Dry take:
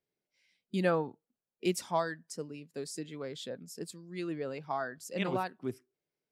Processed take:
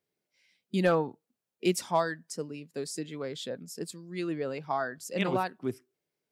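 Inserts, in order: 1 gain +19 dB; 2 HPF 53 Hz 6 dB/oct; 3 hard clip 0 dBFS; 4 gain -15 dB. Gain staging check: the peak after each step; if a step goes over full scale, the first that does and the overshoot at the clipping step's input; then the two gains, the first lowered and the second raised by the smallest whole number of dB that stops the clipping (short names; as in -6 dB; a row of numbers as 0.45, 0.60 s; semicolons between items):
+4.0, +4.0, 0.0, -15.0 dBFS; step 1, 4.0 dB; step 1 +15 dB, step 4 -11 dB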